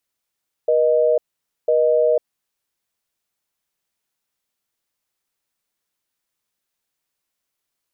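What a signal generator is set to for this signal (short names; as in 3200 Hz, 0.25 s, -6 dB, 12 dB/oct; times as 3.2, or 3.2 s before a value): call progress tone busy tone, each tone -16 dBFS 1.58 s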